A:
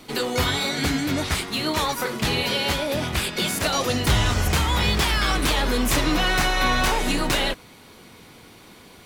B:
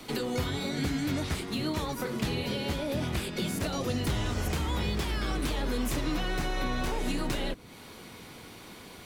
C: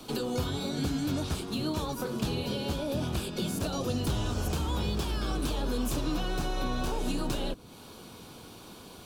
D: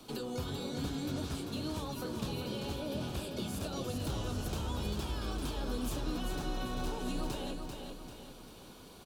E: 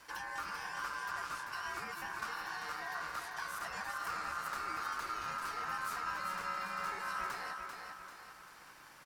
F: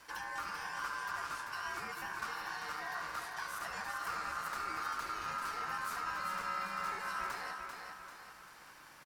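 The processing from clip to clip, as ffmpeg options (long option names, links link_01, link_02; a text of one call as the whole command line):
ffmpeg -i in.wav -filter_complex "[0:a]acrossover=split=230|470[link_01][link_02][link_03];[link_01]acompressor=threshold=-31dB:ratio=4[link_04];[link_02]acompressor=threshold=-36dB:ratio=4[link_05];[link_03]acompressor=threshold=-38dB:ratio=4[link_06];[link_04][link_05][link_06]amix=inputs=3:normalize=0" out.wav
ffmpeg -i in.wav -af "equalizer=frequency=2000:width=3.8:gain=-15" out.wav
ffmpeg -i in.wav -af "aecho=1:1:392|784|1176|1568|1960|2352:0.531|0.244|0.112|0.0517|0.0238|0.0109,volume=-7dB" out.wav
ffmpeg -i in.wav -af "aeval=exprs='val(0)*sin(2*PI*1300*n/s)':channel_layout=same,volume=-1dB" out.wav
ffmpeg -i in.wav -af "aecho=1:1:72:0.282" out.wav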